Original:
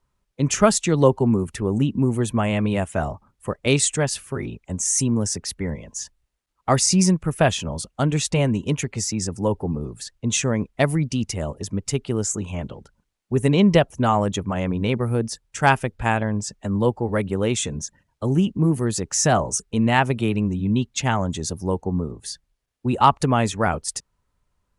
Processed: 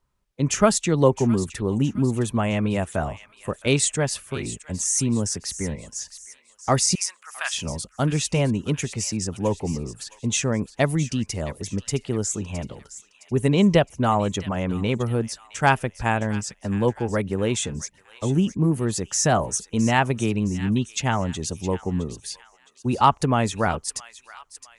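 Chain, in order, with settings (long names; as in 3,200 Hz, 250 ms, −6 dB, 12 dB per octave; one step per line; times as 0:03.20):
0:06.95–0:07.54: high-pass filter 1,200 Hz 24 dB per octave
delay with a high-pass on its return 664 ms, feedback 43%, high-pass 1,600 Hz, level −13 dB
level −1.5 dB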